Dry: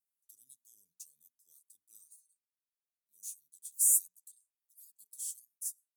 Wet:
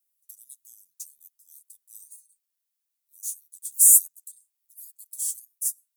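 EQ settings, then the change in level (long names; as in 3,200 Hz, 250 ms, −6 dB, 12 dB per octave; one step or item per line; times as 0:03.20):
spectral tilt +3.5 dB per octave
0.0 dB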